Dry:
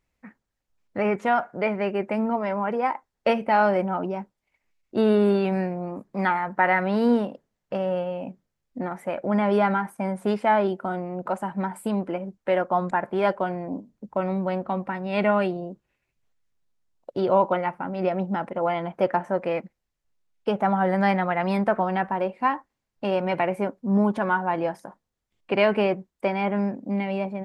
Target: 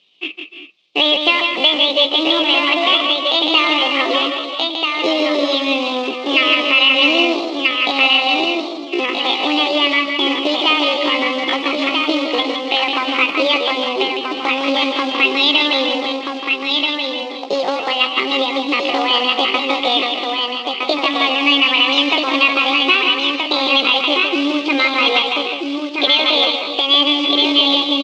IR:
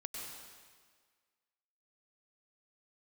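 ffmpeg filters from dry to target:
-filter_complex "[0:a]bandreject=frequency=1000:width=5.1,acompressor=threshold=-28dB:ratio=16,asetrate=63504,aresample=44100,acrusher=bits=5:mode=log:mix=0:aa=0.000001,aexciter=amount=15.1:drive=1.1:freq=2500,highpass=frequency=210:width=0.5412,highpass=frequency=210:width=1.3066,equalizer=frequency=250:width_type=q:width=4:gain=-7,equalizer=frequency=880:width_type=q:width=4:gain=-8,equalizer=frequency=1900:width_type=q:width=4:gain=-5,lowpass=frequency=3200:width=0.5412,lowpass=frequency=3200:width=1.3066,aecho=1:1:870|1740|2610:0.596|0.143|0.0343,asplit=2[link_01][link_02];[1:a]atrim=start_sample=2205,afade=type=out:start_time=0.21:duration=0.01,atrim=end_sample=9702,adelay=106[link_03];[link_02][link_03]afir=irnorm=-1:irlink=0,volume=-1.5dB[link_04];[link_01][link_04]amix=inputs=2:normalize=0,atempo=0.68,alimiter=level_in=15dB:limit=-1dB:release=50:level=0:latency=1,volume=-1dB"

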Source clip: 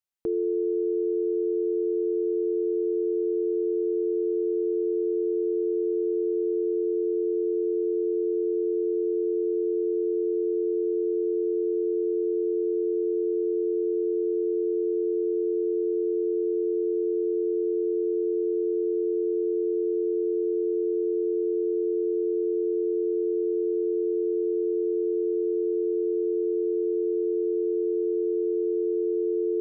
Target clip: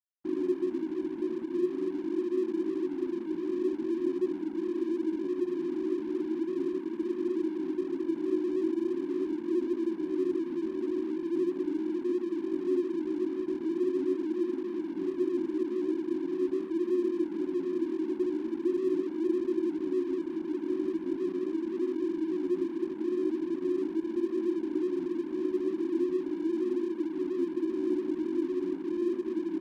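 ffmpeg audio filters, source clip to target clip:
ffmpeg -i in.wav -filter_complex "[0:a]afftfilt=real='hypot(re,im)*cos(2*PI*random(0))':imag='hypot(re,im)*sin(2*PI*random(1))':win_size=512:overlap=0.75,afftfilt=real='re*between(b*sr/4096,160,380)':imag='im*between(b*sr/4096,160,380)':win_size=4096:overlap=0.75,bandreject=frequency=50:width_type=h:width=6,bandreject=frequency=100:width_type=h:width=6,bandreject=frequency=150:width_type=h:width=6,bandreject=frequency=200:width_type=h:width=6,bandreject=frequency=250:width_type=h:width=6,acrossover=split=290[link_01][link_02];[link_01]alimiter=level_in=18.5dB:limit=-24dB:level=0:latency=1:release=451,volume=-18.5dB[link_03];[link_02]acontrast=53[link_04];[link_03][link_04]amix=inputs=2:normalize=0,flanger=delay=8.2:depth=5.5:regen=-11:speed=0.41:shape=triangular,aeval=exprs='sgn(val(0))*max(abs(val(0))-0.00237,0)':channel_layout=same,asplit=2[link_05][link_06];[link_06]adelay=22,volume=-13.5dB[link_07];[link_05][link_07]amix=inputs=2:normalize=0,volume=5.5dB" out.wav

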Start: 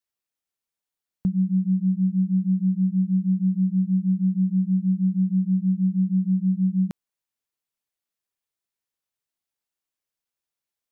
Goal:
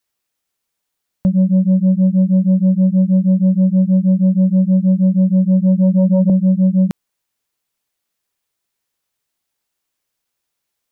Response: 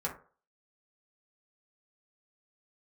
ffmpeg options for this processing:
-filter_complex "[0:a]asettb=1/sr,asplit=3[link_01][link_02][link_03];[link_01]atrim=end=5.274[link_04];[link_02]atrim=start=5.27:end=6.3,asetpts=PTS-STARTPTS,afade=type=in:duration=0.004:curve=qsin,afade=type=out:start_time=1.026:duration=0.004:curve=qsin,asubboost=boost=10:cutoff=170[link_05];[link_03]atrim=start=6.296[link_06];[link_04][link_05]acrossfade=duration=0.004:curve1=hsin:curve2=qsin[link_07];[link_07][link_06]acrossfade=duration=0.004:curve1=qsin:curve2=hsin,aeval=exprs='0.266*sin(PI/2*1.78*val(0)/0.266)':channel_layout=same,volume=2.5dB"

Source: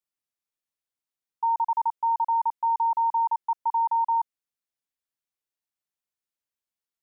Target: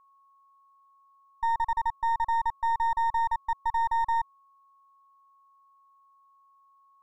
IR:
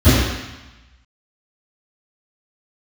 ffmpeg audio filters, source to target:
-af "aeval=exprs='if(lt(val(0),0),0.447*val(0),val(0))':channel_layout=same,aeval=exprs='val(0)+0.00112*sin(2*PI*1100*n/s)':channel_layout=same"

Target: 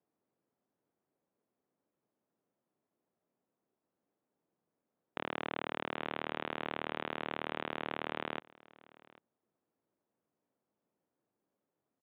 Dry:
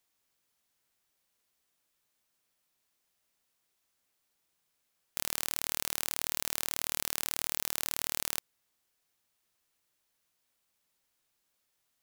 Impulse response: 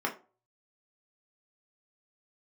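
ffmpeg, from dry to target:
-filter_complex "[0:a]adynamicsmooth=sensitivity=1.5:basefreq=510,highpass=210,asplit=2[link_01][link_02];[link_02]aecho=0:1:796:0.075[link_03];[link_01][link_03]amix=inputs=2:normalize=0,aresample=8000,aresample=44100,volume=11.5dB"

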